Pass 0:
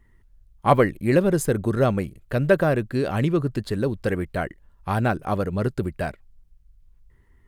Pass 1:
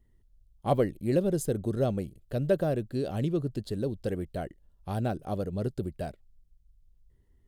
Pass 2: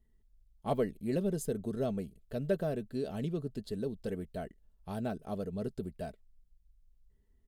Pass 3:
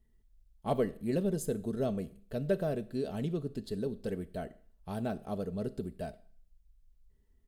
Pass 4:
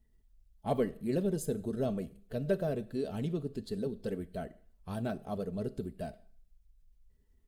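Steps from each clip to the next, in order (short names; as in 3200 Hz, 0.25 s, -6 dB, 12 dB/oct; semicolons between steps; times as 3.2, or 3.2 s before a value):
band shelf 1500 Hz -10 dB; gain -7 dB
comb 4.6 ms, depth 47%; gain -6 dB
Schroeder reverb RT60 0.49 s, combs from 27 ms, DRR 15.5 dB; gain +1 dB
bin magnitudes rounded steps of 15 dB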